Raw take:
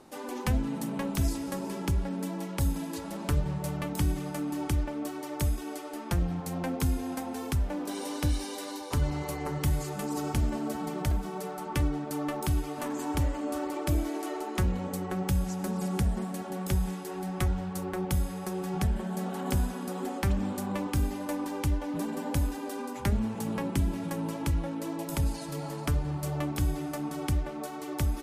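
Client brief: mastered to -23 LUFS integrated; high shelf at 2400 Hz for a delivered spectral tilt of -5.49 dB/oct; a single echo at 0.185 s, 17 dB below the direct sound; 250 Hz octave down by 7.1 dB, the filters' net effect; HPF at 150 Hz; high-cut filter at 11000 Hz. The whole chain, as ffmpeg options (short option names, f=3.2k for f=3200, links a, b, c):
-af "highpass=150,lowpass=11k,equalizer=f=250:t=o:g=-8.5,highshelf=f=2.4k:g=-5,aecho=1:1:185:0.141,volume=15dB"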